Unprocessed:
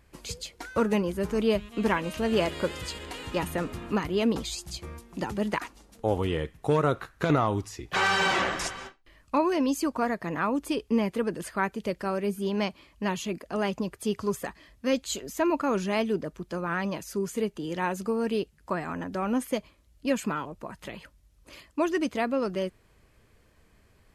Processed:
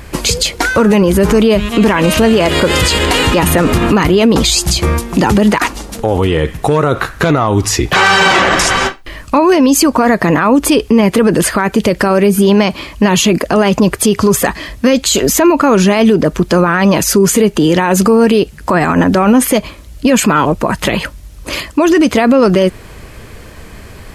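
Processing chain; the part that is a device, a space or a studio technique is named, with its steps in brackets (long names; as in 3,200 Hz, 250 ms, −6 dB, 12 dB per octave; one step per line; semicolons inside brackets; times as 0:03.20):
loud club master (downward compressor 2.5 to 1, threshold −28 dBFS, peak gain reduction 7 dB; hard clipping −18 dBFS, distortion −41 dB; boost into a limiter +29.5 dB)
level −1 dB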